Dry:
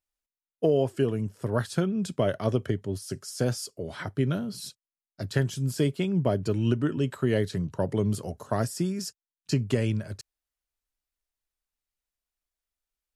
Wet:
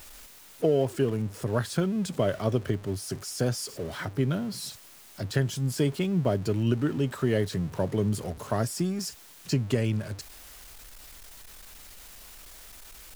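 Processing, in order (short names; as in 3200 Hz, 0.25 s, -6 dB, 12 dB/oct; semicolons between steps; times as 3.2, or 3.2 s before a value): zero-crossing step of -38.5 dBFS; gain -1 dB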